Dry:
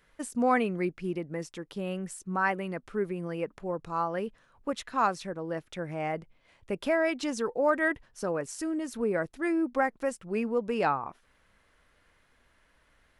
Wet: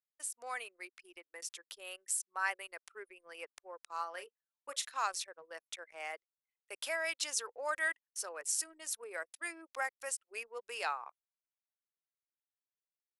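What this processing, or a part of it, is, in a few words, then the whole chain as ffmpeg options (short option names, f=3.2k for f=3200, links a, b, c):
voice memo with heavy noise removal: -filter_complex "[0:a]highpass=f=400:w=0.5412,highpass=f=400:w=1.3066,aderivative,asettb=1/sr,asplit=3[a][b][c];[a]atrim=end=3.934[d];[b]atrim=start=3.93:end=4.92,asetpts=PTS-STARTPTS,afade=t=in:d=0.004:c=qsin,afade=t=out:st=0.986:d=0.004:c=qsin,asplit=2[e][f];[f]adelay=35,volume=-11.5dB[g];[e][g]amix=inputs=2:normalize=0,atrim=end_sample=43659[h];[c]atrim=start=4.916[i];[d][h]acrossfade=d=0.004:c1=hsin:c2=qsin[j];[j][i]acrossfade=d=0.004:c1=qsin:c2=hsin,anlmdn=0.000158,dynaudnorm=f=320:g=7:m=6.5dB,volume=1dB"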